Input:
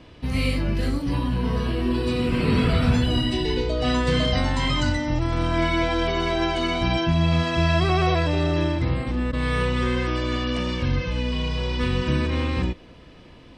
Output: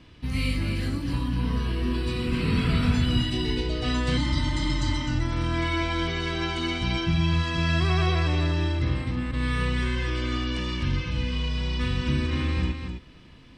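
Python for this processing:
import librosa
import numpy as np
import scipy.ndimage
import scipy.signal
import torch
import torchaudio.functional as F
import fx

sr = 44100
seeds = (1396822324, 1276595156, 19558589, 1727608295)

y = fx.peak_eq(x, sr, hz=590.0, db=-9.0, octaves=1.3)
y = y + 10.0 ** (-6.5 / 20.0) * np.pad(y, (int(257 * sr / 1000.0), 0))[:len(y)]
y = fx.spec_repair(y, sr, seeds[0], start_s=4.2, length_s=0.81, low_hz=240.0, high_hz=3200.0, source='after')
y = y * librosa.db_to_amplitude(-2.5)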